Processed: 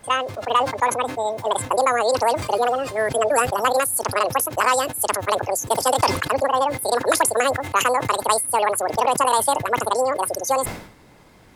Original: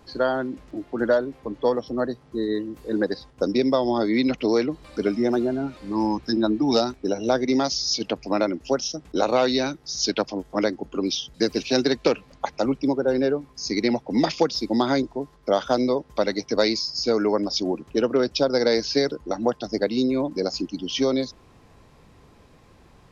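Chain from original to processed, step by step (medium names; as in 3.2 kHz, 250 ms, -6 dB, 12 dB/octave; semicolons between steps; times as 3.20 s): speed mistake 7.5 ips tape played at 15 ips; decay stretcher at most 87 dB/s; trim +2 dB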